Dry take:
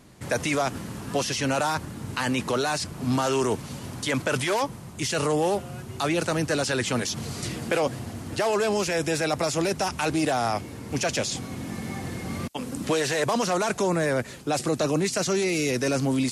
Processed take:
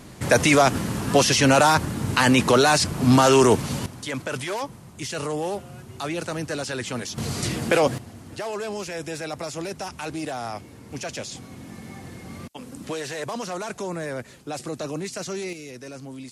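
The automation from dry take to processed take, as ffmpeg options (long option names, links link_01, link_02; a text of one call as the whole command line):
ffmpeg -i in.wav -af "asetnsamples=nb_out_samples=441:pad=0,asendcmd='3.86 volume volume -4dB;7.18 volume volume 5dB;7.98 volume volume -6.5dB;15.53 volume volume -14dB',volume=8.5dB" out.wav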